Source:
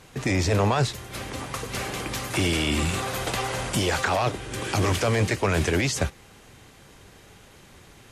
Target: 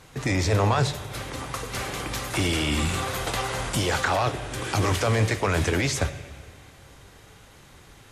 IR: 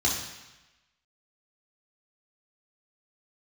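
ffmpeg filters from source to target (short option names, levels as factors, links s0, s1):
-filter_complex "[0:a]asplit=2[s0][s1];[1:a]atrim=start_sample=2205,asetrate=23373,aresample=44100[s2];[s1][s2]afir=irnorm=-1:irlink=0,volume=0.0473[s3];[s0][s3]amix=inputs=2:normalize=0"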